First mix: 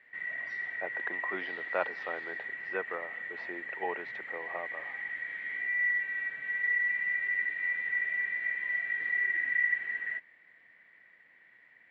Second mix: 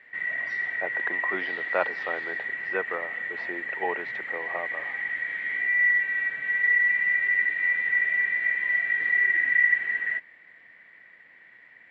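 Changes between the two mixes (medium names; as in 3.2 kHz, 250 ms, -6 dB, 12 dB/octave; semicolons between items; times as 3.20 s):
speech +5.5 dB; background +7.5 dB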